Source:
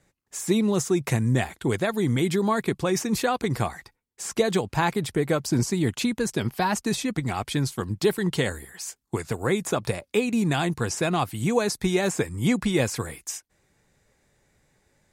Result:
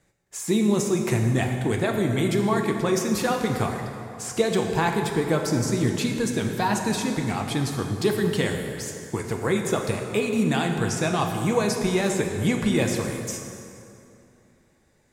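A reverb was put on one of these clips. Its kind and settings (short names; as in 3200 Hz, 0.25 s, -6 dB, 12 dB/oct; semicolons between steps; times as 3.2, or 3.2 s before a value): plate-style reverb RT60 2.8 s, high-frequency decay 0.65×, DRR 2.5 dB; gain -1 dB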